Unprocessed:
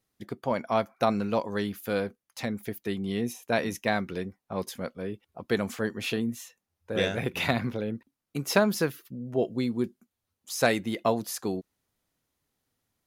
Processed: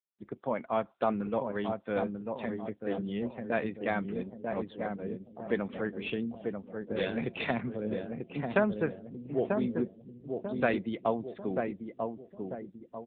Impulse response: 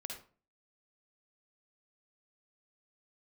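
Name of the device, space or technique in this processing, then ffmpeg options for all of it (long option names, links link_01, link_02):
mobile call with aggressive noise cancelling: -filter_complex "[0:a]equalizer=frequency=9700:width=0.95:gain=2,asettb=1/sr,asplit=3[link_01][link_02][link_03];[link_01]atrim=end=7.144[link_04];[link_02]atrim=start=7.14:end=7.84,asetpts=PTS-STARTPTS,afade=type=in:duration=0.004:curve=qsin,afade=type=out:start_time=0.696:duration=0.004:curve=qsin,bandreject=frequency=45.26:width_type=h:width=4,bandreject=frequency=90.52:width_type=h:width=4[link_05];[link_03]atrim=start=7.836[link_06];[link_04][link_05]acrossfade=duration=0.004:curve1=hsin:curve2=qsin[link_07];[link_07][link_06]acrossfade=duration=0.004:curve1=qsin:curve2=hsin,highpass=130,asplit=2[link_08][link_09];[link_09]adelay=942,lowpass=frequency=1200:poles=1,volume=-4dB,asplit=2[link_10][link_11];[link_11]adelay=942,lowpass=frequency=1200:poles=1,volume=0.46,asplit=2[link_12][link_13];[link_13]adelay=942,lowpass=frequency=1200:poles=1,volume=0.46,asplit=2[link_14][link_15];[link_15]adelay=942,lowpass=frequency=1200:poles=1,volume=0.46,asplit=2[link_16][link_17];[link_17]adelay=942,lowpass=frequency=1200:poles=1,volume=0.46,asplit=2[link_18][link_19];[link_19]adelay=942,lowpass=frequency=1200:poles=1,volume=0.46[link_20];[link_08][link_10][link_12][link_14][link_16][link_18][link_20]amix=inputs=7:normalize=0,afftdn=noise_reduction=24:noise_floor=-48,volume=-3.5dB" -ar 8000 -c:a libopencore_amrnb -b:a 7950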